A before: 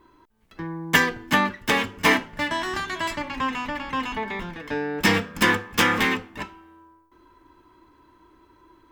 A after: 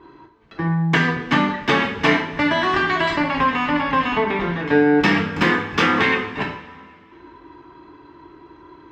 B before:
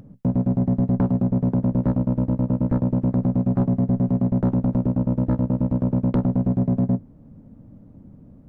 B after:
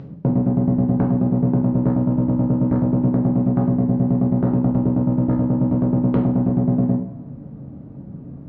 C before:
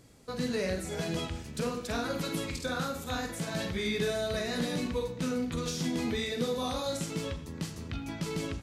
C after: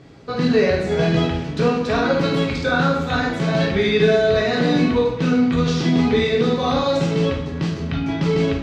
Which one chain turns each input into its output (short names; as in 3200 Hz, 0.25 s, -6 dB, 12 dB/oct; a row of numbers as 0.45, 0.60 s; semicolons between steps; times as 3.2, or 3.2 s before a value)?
HPF 70 Hz; compressor, threshold -24 dBFS; air absorption 200 m; two-slope reverb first 0.48 s, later 2.3 s, from -18 dB, DRR 0 dB; match loudness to -19 LUFS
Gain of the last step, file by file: +9.5, +8.0, +12.5 dB